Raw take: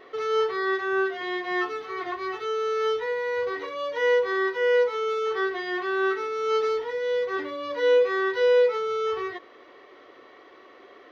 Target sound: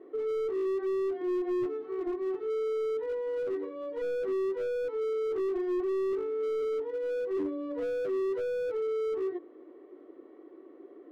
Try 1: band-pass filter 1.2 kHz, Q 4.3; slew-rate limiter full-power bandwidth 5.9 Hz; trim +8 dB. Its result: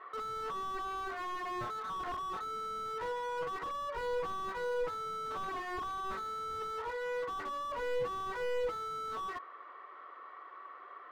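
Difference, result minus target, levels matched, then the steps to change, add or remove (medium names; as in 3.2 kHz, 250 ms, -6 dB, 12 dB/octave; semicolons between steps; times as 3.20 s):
1 kHz band +16.5 dB
change: band-pass filter 320 Hz, Q 4.3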